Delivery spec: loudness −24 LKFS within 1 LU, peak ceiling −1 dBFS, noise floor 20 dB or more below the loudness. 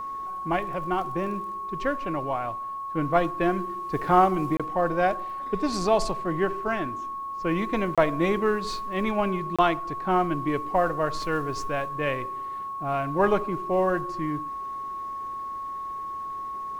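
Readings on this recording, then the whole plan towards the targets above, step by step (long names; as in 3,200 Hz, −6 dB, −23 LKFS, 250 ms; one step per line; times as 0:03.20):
number of dropouts 3; longest dropout 26 ms; interfering tone 1,100 Hz; level of the tone −31 dBFS; integrated loudness −27.0 LKFS; sample peak −7.0 dBFS; target loudness −24.0 LKFS
→ repair the gap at 0:04.57/0:07.95/0:09.56, 26 ms
notch filter 1,100 Hz, Q 30
level +3 dB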